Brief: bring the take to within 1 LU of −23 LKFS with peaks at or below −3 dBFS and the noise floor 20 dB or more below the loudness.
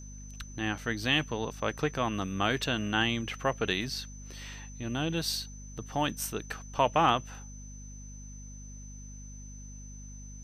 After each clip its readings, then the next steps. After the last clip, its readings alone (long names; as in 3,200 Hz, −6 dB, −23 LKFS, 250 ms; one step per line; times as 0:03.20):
mains hum 50 Hz; hum harmonics up to 250 Hz; level of the hum −42 dBFS; interfering tone 6,100 Hz; level of the tone −50 dBFS; integrated loudness −30.5 LKFS; sample peak −11.5 dBFS; target loudness −23.0 LKFS
→ hum removal 50 Hz, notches 5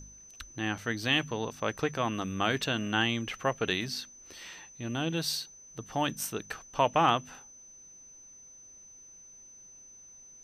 mains hum none found; interfering tone 6,100 Hz; level of the tone −50 dBFS
→ notch filter 6,100 Hz, Q 30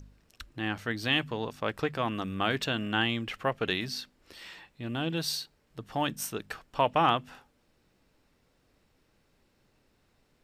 interfering tone none found; integrated loudness −31.0 LKFS; sample peak −11.5 dBFS; target loudness −23.0 LKFS
→ level +8 dB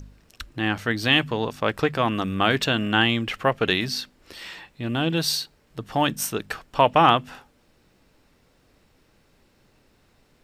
integrated loudness −23.0 LKFS; sample peak −3.5 dBFS; background noise floor −62 dBFS